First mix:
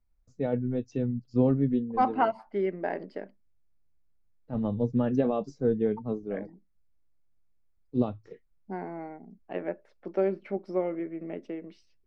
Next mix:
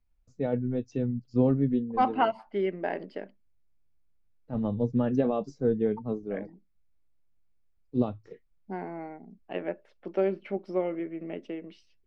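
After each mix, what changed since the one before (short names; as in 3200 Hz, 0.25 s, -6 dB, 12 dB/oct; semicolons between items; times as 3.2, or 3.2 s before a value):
second voice: add bell 3000 Hz +8 dB 0.57 oct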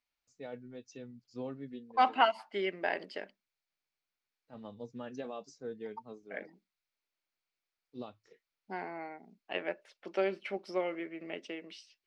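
first voice -10.0 dB; master: add tilt +4.5 dB/oct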